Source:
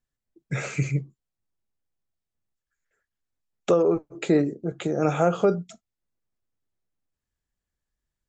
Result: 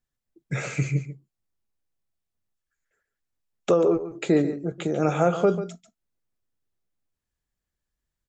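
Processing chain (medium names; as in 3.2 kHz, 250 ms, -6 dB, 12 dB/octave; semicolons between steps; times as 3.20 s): delay 142 ms -12 dB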